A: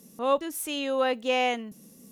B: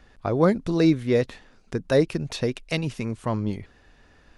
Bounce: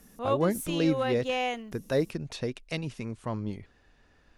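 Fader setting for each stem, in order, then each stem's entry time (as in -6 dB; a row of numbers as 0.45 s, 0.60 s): -4.5 dB, -7.0 dB; 0.00 s, 0.00 s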